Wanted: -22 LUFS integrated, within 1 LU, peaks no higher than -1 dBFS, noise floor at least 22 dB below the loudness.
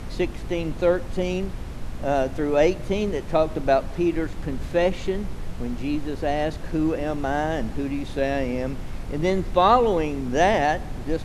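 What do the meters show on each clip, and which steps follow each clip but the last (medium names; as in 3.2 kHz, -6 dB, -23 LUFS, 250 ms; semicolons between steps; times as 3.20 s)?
hum 60 Hz; highest harmonic 240 Hz; hum level -40 dBFS; noise floor -34 dBFS; noise floor target -47 dBFS; loudness -24.5 LUFS; peak level -5.0 dBFS; loudness target -22.0 LUFS
-> de-hum 60 Hz, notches 4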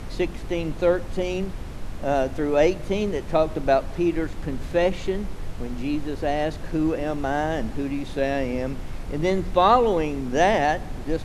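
hum not found; noise floor -34 dBFS; noise floor target -47 dBFS
-> noise print and reduce 13 dB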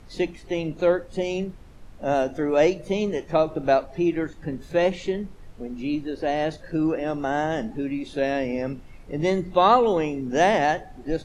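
noise floor -45 dBFS; noise floor target -47 dBFS
-> noise print and reduce 6 dB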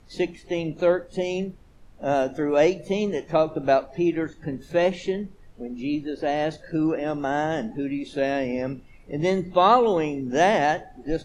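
noise floor -50 dBFS; loudness -24.5 LUFS; peak level -5.0 dBFS; loudness target -22.0 LUFS
-> trim +2.5 dB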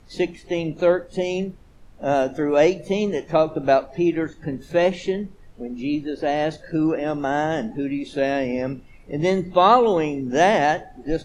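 loudness -22.0 LUFS; peak level -2.5 dBFS; noise floor -47 dBFS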